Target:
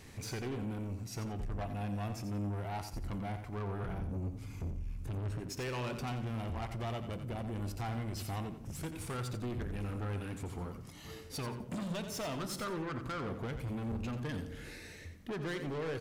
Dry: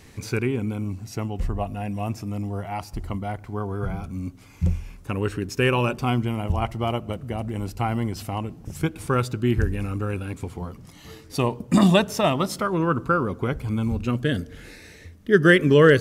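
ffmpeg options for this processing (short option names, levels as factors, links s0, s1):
-filter_complex "[0:a]asettb=1/sr,asplit=3[s0][s1][s2];[s0]atrim=end=3.984[s3];[s1]atrim=start=3.98:end=5.4,asetpts=PTS-STARTPTS,afade=t=in:d=0.004:c=qsin,afade=t=out:st=1.416:d=0.004:c=qsin,bass=f=250:g=13,treble=f=4000:g=1[s4];[s2]atrim=start=5.396[s5];[s3][s4]acrossfade=d=0.004:c1=hsin:c2=qsin[s6];[s6][s5]acrossfade=d=0.004:c1=qsin:c2=hsin,acompressor=threshold=0.0794:ratio=10,asoftclip=type=tanh:threshold=0.0282,flanger=delay=7.7:depth=1.5:regen=-87:speed=0.18:shape=triangular,asplit=2[s7][s8];[s8]aecho=0:1:88|176|264:0.335|0.0871|0.0226[s9];[s7][s9]amix=inputs=2:normalize=0"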